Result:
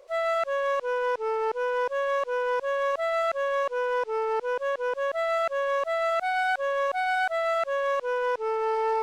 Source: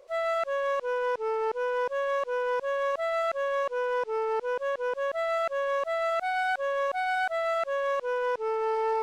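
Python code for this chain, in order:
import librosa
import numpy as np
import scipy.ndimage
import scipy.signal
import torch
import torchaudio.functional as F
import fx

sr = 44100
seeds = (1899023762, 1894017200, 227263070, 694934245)

y = fx.peak_eq(x, sr, hz=160.0, db=-8.0, octaves=1.5)
y = F.gain(torch.from_numpy(y), 2.5).numpy()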